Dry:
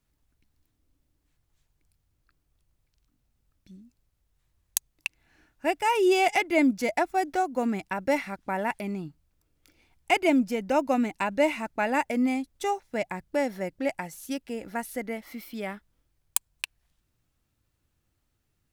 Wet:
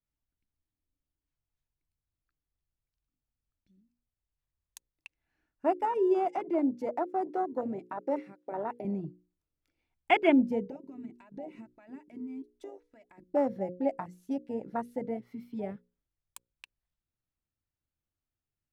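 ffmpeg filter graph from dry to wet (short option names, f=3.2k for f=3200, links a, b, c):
-filter_complex "[0:a]asettb=1/sr,asplit=3[a][b][c];[a]atrim=end=5.854[d];[b]atrim=start=5.85:end=8.85,asetpts=PTS-STARTPTS,afade=t=in:d=0.004:c=qsin,afade=t=out:st=2.996:d=0.004:c=qsin,acompressor=threshold=-39dB:ratio=1.5:attack=3.2:release=140:knee=1:detection=peak,highpass=f=320:t=q:w=1.6[e];[c]atrim=start=8.846[f];[d][e]acrossfade=d=0.004:c1=hsin:c2=qsin[g];[g][f]acrossfade=d=0.004:c1=qsin:c2=hsin,asettb=1/sr,asplit=3[h][i][j];[h]atrim=end=10.644[k];[i]atrim=start=10.64:end=13.29,asetpts=PTS-STARTPTS,afade=t=in:d=0.004:c=qsin,afade=t=out:st=2.646:d=0.004:c=qsin,bandreject=f=60:t=h:w=6,bandreject=f=120:t=h:w=6,bandreject=f=180:t=h:w=6,bandreject=f=240:t=h:w=6,bandreject=f=300:t=h:w=6,bandreject=f=360:t=h:w=6,bandreject=f=420:t=h:w=6,aecho=1:1:3.1:0.47,atrim=end_sample=116865,acompressor=threshold=-36dB:ratio=16:attack=3.2:release=140:knee=1:detection=peak[l];[j]atrim=start=13.286[m];[k][l]acrossfade=d=0.004:c1=hsin:c2=qsin[n];[n][m]acrossfade=d=0.004:c1=qsin:c2=hsin,afwtdn=0.0316,lowpass=f=3.6k:p=1,bandreject=f=60:t=h:w=6,bandreject=f=120:t=h:w=6,bandreject=f=180:t=h:w=6,bandreject=f=240:t=h:w=6,bandreject=f=300:t=h:w=6,bandreject=f=360:t=h:w=6,bandreject=f=420:t=h:w=6,bandreject=f=480:t=h:w=6,bandreject=f=540:t=h:w=6"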